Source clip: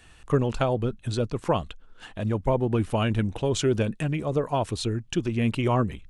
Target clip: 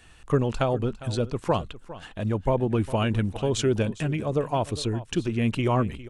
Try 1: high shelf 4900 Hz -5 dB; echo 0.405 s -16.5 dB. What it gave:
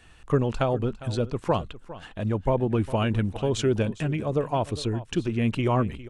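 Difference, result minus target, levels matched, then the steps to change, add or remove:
8000 Hz band -3.5 dB
remove: high shelf 4900 Hz -5 dB

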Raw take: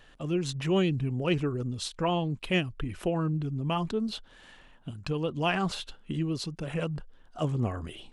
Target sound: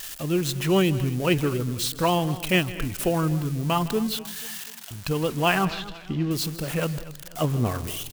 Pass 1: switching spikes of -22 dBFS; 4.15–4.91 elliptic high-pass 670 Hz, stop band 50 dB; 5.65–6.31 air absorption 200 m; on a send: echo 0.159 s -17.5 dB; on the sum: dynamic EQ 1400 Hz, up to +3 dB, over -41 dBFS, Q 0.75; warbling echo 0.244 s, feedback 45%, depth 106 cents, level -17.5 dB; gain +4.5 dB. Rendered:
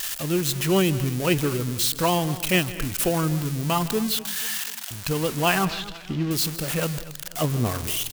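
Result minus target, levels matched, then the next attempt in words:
switching spikes: distortion +7 dB
switching spikes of -29 dBFS; 4.15–4.91 elliptic high-pass 670 Hz, stop band 50 dB; 5.65–6.31 air absorption 200 m; on a send: echo 0.159 s -17.5 dB; on the sum: dynamic EQ 1400 Hz, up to +3 dB, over -41 dBFS, Q 0.75; warbling echo 0.244 s, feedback 45%, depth 106 cents, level -17.5 dB; gain +4.5 dB

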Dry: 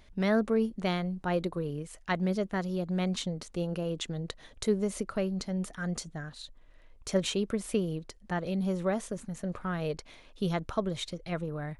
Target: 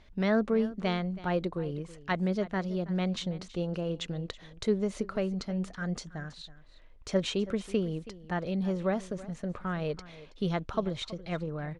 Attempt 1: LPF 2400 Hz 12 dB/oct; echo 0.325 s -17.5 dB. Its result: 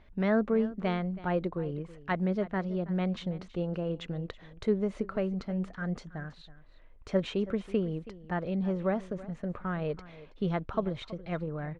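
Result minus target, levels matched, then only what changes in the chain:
4000 Hz band -6.5 dB
change: LPF 5400 Hz 12 dB/oct

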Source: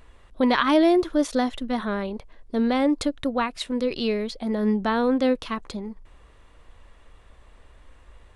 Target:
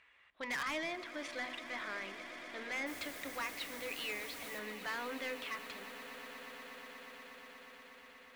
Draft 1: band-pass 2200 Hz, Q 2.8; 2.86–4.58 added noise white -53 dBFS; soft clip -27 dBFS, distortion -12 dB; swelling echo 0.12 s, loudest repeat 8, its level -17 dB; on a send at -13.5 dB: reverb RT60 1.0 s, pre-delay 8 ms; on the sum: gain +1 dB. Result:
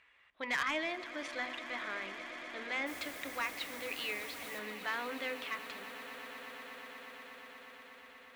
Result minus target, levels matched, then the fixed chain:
soft clip: distortion -6 dB
band-pass 2200 Hz, Q 2.8; 2.86–4.58 added noise white -53 dBFS; soft clip -35 dBFS, distortion -7 dB; swelling echo 0.12 s, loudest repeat 8, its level -17 dB; on a send at -13.5 dB: reverb RT60 1.0 s, pre-delay 8 ms; on the sum: gain +1 dB

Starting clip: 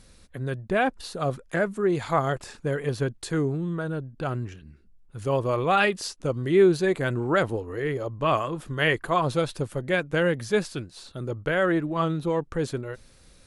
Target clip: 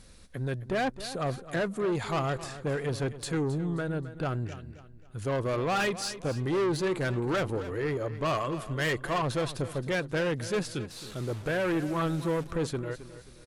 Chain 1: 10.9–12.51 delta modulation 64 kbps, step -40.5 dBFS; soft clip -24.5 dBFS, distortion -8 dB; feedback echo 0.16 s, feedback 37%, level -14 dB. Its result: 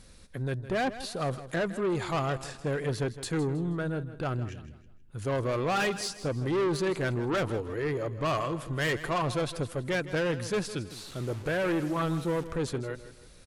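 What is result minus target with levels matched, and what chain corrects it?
echo 0.106 s early
10.9–12.51 delta modulation 64 kbps, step -40.5 dBFS; soft clip -24.5 dBFS, distortion -8 dB; feedback echo 0.266 s, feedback 37%, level -14 dB

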